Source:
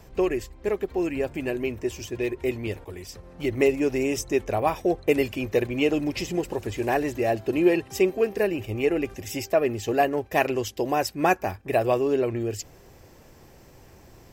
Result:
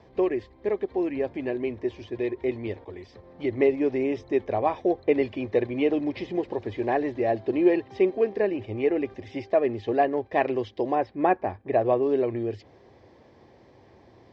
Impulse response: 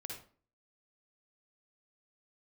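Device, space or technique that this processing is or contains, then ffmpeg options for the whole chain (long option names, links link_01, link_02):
guitar cabinet: -filter_complex "[0:a]acrossover=split=4200[link_01][link_02];[link_02]acompressor=threshold=-49dB:ratio=4:attack=1:release=60[link_03];[link_01][link_03]amix=inputs=2:normalize=0,asettb=1/sr,asplit=3[link_04][link_05][link_06];[link_04]atrim=end=10.954[link_07];[link_05]atrim=start=10.95:end=12.03,asetpts=PTS-STARTPTS,afade=type=in:duration=0.004:curve=qsin,afade=type=out:start_time=1.076:duration=0.004:curve=qsin,aemphasis=mode=reproduction:type=75fm[link_08];[link_06]atrim=start=12.026[link_09];[link_07][link_08]acrossfade=duration=0.004:curve1=hsin:curve2=qsin[link_10];[link_10][link_09]acrossfade=duration=0.004:curve1=qsin:curve2=hsin,highpass=110,equalizer=frequency=160:width_type=q:width=4:gain=-10,equalizer=frequency=1400:width_type=q:width=4:gain=-9,equalizer=frequency=2700:width_type=q:width=4:gain=-10,lowpass=frequency=3900:width=0.5412,lowpass=frequency=3900:width=1.3066"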